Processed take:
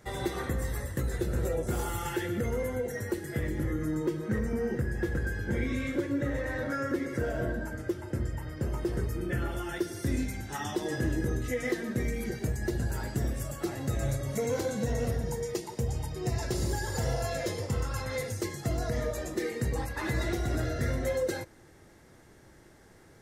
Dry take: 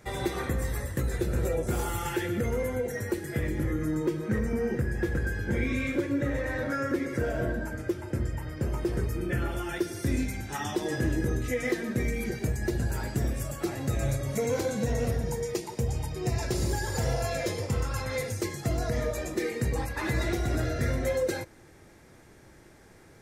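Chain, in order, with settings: notch 2400 Hz, Q 11; gain -2 dB

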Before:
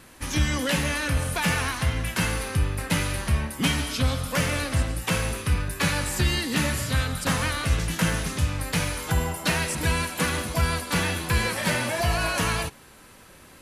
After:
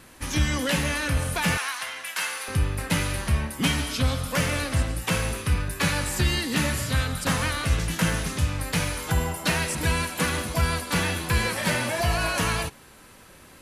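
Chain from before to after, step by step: 1.57–2.48 HPF 910 Hz 12 dB/oct

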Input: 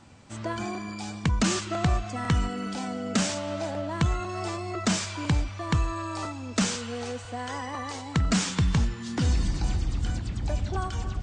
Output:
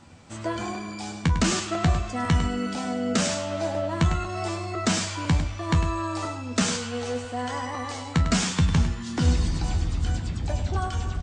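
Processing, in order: resonator 82 Hz, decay 0.15 s, harmonics all, mix 80%; echo 0.102 s -10 dB; gain +6.5 dB

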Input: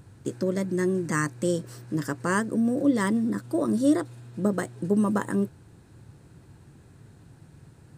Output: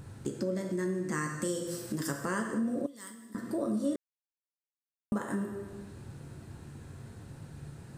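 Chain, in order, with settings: 1.41–2.16 high shelf 5200 Hz -> 3500 Hz +10 dB; plate-style reverb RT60 0.92 s, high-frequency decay 0.9×, DRR 2 dB; 3.96–5.12 mute; compressor 2.5:1, threshold -38 dBFS, peak gain reduction 15.5 dB; 2.86–3.35 pre-emphasis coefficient 0.9; gain +2.5 dB

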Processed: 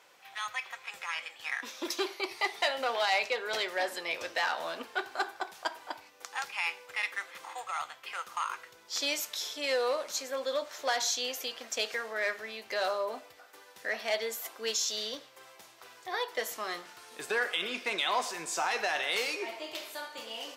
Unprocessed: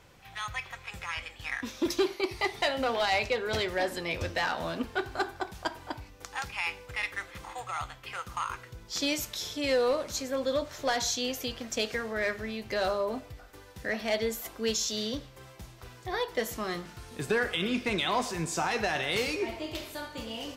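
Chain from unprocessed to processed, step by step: HPF 560 Hz 12 dB/oct

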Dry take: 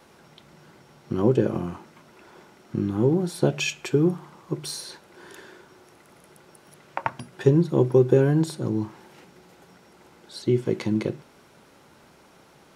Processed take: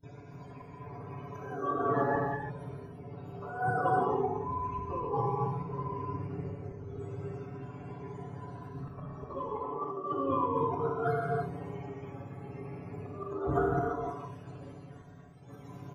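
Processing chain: spectrum mirrored in octaves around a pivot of 430 Hz; limiter -18 dBFS, peak gain reduction 9 dB; comb 5.6 ms, depth 89%; varispeed -20%; negative-ratio compressor -33 dBFS, ratio -1; high shelf 2100 Hz +8.5 dB; gate -46 dBFS, range -23 dB; bell 230 Hz -4 dB 0.43 oct; notch 860 Hz, Q 25; auto swell 0.299 s; non-linear reverb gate 0.36 s flat, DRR -3 dB

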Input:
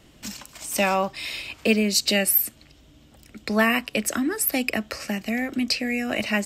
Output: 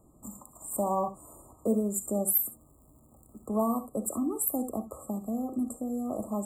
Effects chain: 2.26–3.45 crackle 420/s -42 dBFS; non-linear reverb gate 90 ms rising, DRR 10.5 dB; FFT band-reject 1300–7000 Hz; gain -6 dB

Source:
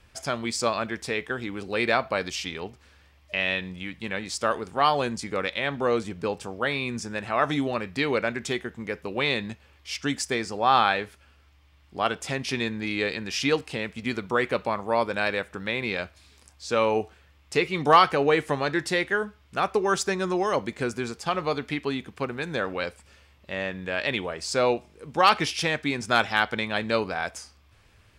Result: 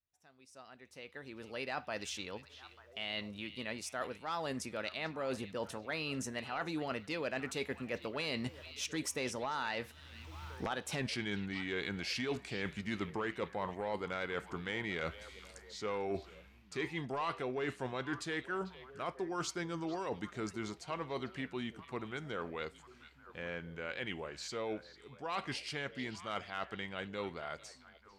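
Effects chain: Doppler pass-by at 11.01, 38 m/s, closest 2.4 m; recorder AGC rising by 19 dB/s; sine folder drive 6 dB, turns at -13 dBFS; reverse; compressor 5:1, threshold -30 dBFS, peak gain reduction 12 dB; reverse; delay with a stepping band-pass 0.445 s, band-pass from 3200 Hz, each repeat -1.4 oct, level -11 dB; gain -5.5 dB

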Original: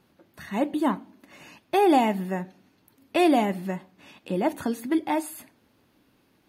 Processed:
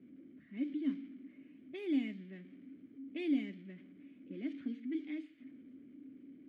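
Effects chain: zero-crossing step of -33.5 dBFS; low-pass opened by the level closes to 660 Hz, open at -16 dBFS; vowel filter i; gain -6 dB

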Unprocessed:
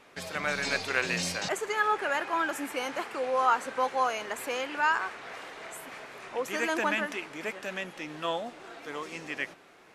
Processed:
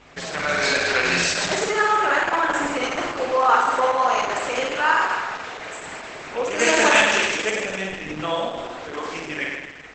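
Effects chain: hum 50 Hz, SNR 31 dB; 6.59–7.5 EQ curve 320 Hz 0 dB, 460 Hz +6 dB, 1300 Hz +2 dB, 7200 Hz +14 dB; flutter echo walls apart 9 m, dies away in 1.4 s; gain +6 dB; Opus 10 kbps 48000 Hz

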